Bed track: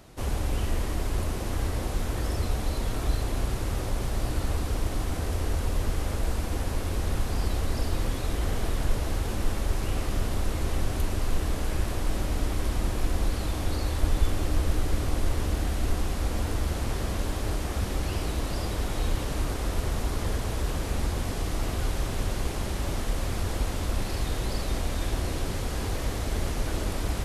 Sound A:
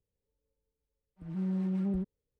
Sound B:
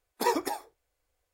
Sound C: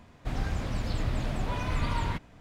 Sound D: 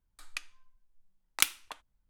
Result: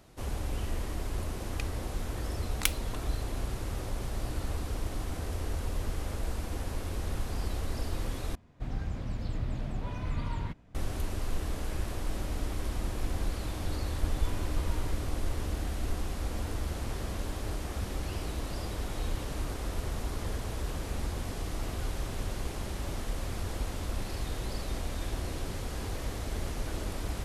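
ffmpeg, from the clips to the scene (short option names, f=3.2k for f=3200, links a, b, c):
-filter_complex "[3:a]asplit=2[a][b];[0:a]volume=-6dB[c];[a]lowshelf=f=490:g=7.5[d];[c]asplit=2[e][f];[e]atrim=end=8.354[g];[d]atrim=end=2.4,asetpts=PTS-STARTPTS,volume=-10.5dB[h];[f]atrim=start=10.746[i];[4:a]atrim=end=2.09,asetpts=PTS-STARTPTS,volume=-3.5dB,afade=t=in:d=0.004:c=hsin,afade=t=out:st=2.086:d=0.004:c=hsin,adelay=1230[j];[b]atrim=end=2.4,asetpts=PTS-STARTPTS,volume=-13.5dB,afade=t=in:d=0.004:c=hsin,afade=t=out:st=2.396:d=0.004:c=hsin,adelay=12750[k];[g][h]acrossfade=d=0.004:c1=hsin:c2=hsin[l];[l][i]acrossfade=d=0.004:c1=hsin:c2=hsin[m];[m][j][k]amix=inputs=3:normalize=0"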